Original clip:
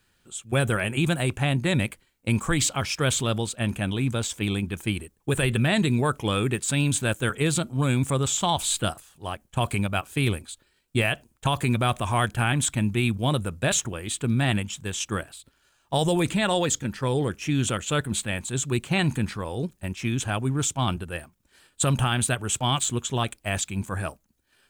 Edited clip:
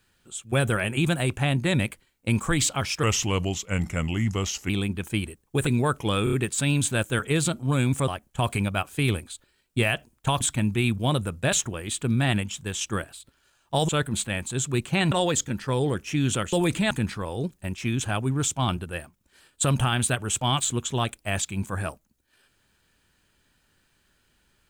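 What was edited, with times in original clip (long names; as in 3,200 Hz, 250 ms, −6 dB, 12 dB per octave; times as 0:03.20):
0:03.03–0:04.43: play speed 84%
0:05.40–0:05.86: remove
0:06.43: stutter 0.03 s, 4 plays
0:08.18–0:09.26: remove
0:11.59–0:12.60: remove
0:16.08–0:16.46: swap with 0:17.87–0:19.10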